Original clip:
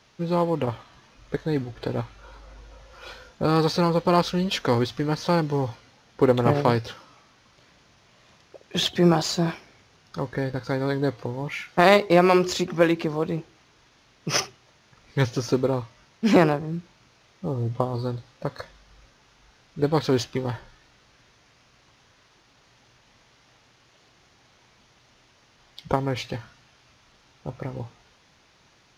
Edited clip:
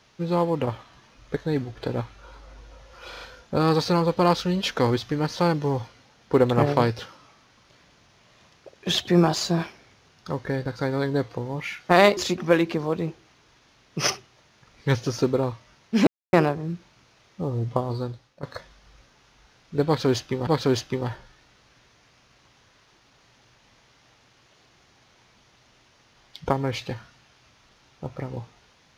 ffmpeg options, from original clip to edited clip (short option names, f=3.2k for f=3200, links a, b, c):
-filter_complex "[0:a]asplit=8[a][b][c][d][e][f][g][h];[a]atrim=end=3.132[i];[b]atrim=start=3.088:end=3.132[j];[c]atrim=start=3.088:end=3.132[k];[d]atrim=start=3.088:end=12.052[l];[e]atrim=start=12.468:end=16.37,asetpts=PTS-STARTPTS,afade=t=out:st=3.898:d=0.004:c=hsin,apad=pad_dur=0.26[m];[f]atrim=start=16.37:end=18.47,asetpts=PTS-STARTPTS,afade=t=in:d=0.004:c=hsin,afade=t=out:st=1.61:d=0.49:silence=0.16788[n];[g]atrim=start=18.47:end=20.512,asetpts=PTS-STARTPTS,afade=t=in:d=0.004:c=hsin:silence=0.16788[o];[h]atrim=start=19.898[p];[i][j]acrossfade=d=0.004:c1=hsin:c2=hsin[q];[q][k]acrossfade=d=0.004:c1=hsin:c2=hsin[r];[r][l]acrossfade=d=0.004:c1=hsin:c2=hsin[s];[m][n][o]concat=n=3:v=0:a=1[t];[s][t]acrossfade=d=0.004:c1=hsin:c2=hsin[u];[u][p]acrossfade=d=0.004:c1=hsin:c2=hsin"